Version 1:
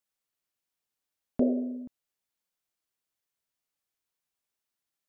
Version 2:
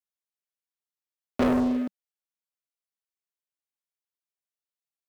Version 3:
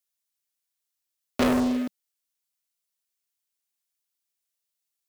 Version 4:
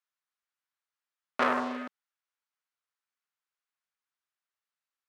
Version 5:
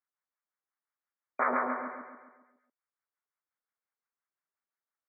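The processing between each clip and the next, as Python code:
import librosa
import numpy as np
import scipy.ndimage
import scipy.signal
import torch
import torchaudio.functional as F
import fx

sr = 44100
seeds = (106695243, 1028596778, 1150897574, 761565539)

y1 = scipy.signal.sosfilt(scipy.signal.ellip(4, 1.0, 40, 190.0, 'highpass', fs=sr, output='sos'), x)
y1 = fx.low_shelf(y1, sr, hz=270.0, db=-9.5)
y1 = fx.leveller(y1, sr, passes=5)
y2 = fx.high_shelf(y1, sr, hz=2600.0, db=12.0)
y3 = fx.bandpass_q(y2, sr, hz=1300.0, q=1.6)
y3 = F.gain(torch.from_numpy(y3), 5.5).numpy()
y4 = fx.filter_lfo_bandpass(y3, sr, shape='sine', hz=5.7, low_hz=330.0, high_hz=1500.0, q=0.92)
y4 = fx.brickwall_lowpass(y4, sr, high_hz=2400.0)
y4 = fx.echo_feedback(y4, sr, ms=137, feedback_pct=49, wet_db=-3.0)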